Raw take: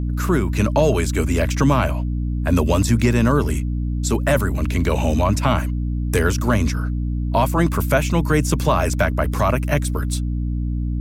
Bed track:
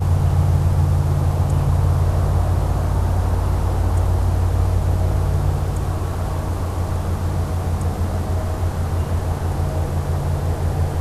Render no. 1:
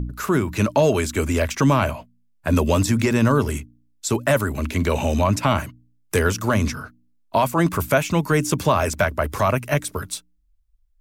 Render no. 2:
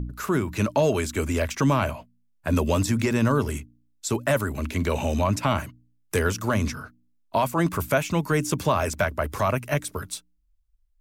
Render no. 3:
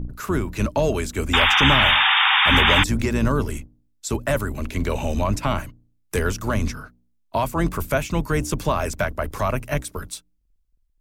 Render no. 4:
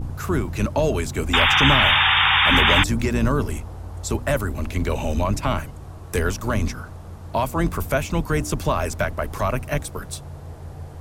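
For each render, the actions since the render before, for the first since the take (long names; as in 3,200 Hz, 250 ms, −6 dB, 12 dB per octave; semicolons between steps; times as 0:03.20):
hum removal 60 Hz, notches 5
level −4 dB
sub-octave generator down 2 octaves, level −2 dB; 0:01.33–0:02.84: sound drawn into the spectrogram noise 750–3,700 Hz −17 dBFS
mix in bed track −16 dB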